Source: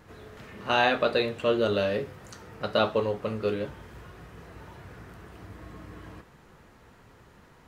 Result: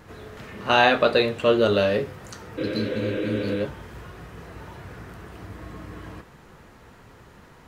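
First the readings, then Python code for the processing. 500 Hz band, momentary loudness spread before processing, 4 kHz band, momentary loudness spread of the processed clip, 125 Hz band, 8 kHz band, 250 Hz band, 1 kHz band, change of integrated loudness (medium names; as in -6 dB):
+4.0 dB, 23 LU, +4.5 dB, 23 LU, +5.5 dB, no reading, +6.0 dB, +4.5 dB, +4.5 dB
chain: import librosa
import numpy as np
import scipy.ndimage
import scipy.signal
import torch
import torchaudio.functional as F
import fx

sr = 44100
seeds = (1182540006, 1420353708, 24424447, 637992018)

y = fx.spec_repair(x, sr, seeds[0], start_s=2.61, length_s=0.93, low_hz=240.0, high_hz=4000.0, source='after')
y = F.gain(torch.from_numpy(y), 5.5).numpy()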